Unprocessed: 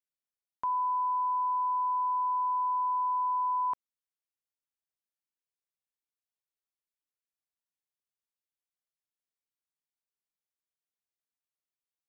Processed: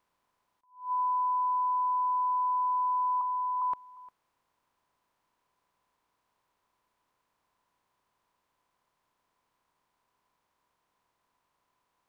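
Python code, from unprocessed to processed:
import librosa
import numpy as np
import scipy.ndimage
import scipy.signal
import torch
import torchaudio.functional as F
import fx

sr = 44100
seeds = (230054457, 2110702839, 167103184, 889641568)

y = fx.bin_compress(x, sr, power=0.6)
y = fx.lowpass(y, sr, hz=1100.0, slope=12, at=(3.21, 3.62))
y = y + 10.0 ** (-20.0 / 20.0) * np.pad(y, (int(352 * sr / 1000.0), 0))[:len(y)]
y = fx.attack_slew(y, sr, db_per_s=160.0)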